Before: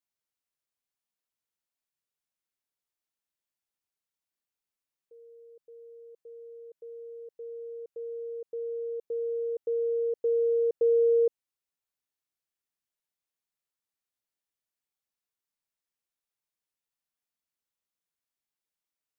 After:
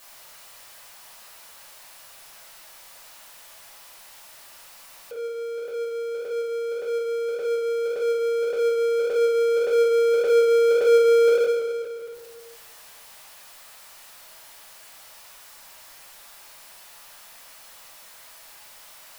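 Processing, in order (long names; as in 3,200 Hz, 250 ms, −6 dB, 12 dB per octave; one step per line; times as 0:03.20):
low shelf with overshoot 470 Hz −12 dB, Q 1.5
rectangular room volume 400 cubic metres, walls mixed, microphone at 5.8 metres
power curve on the samples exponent 0.5
level −1.5 dB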